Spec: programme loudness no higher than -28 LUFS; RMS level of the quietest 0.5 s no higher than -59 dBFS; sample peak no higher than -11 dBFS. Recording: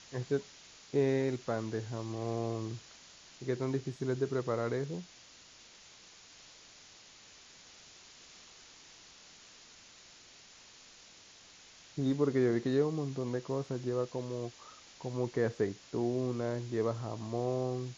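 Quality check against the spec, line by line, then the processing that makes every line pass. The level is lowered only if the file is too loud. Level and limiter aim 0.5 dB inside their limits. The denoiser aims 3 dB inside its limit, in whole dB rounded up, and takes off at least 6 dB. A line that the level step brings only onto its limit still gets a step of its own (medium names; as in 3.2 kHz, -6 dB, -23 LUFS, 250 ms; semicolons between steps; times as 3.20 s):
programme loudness -34.5 LUFS: pass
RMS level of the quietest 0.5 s -57 dBFS: fail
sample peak -18.0 dBFS: pass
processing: noise reduction 6 dB, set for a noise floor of -57 dBFS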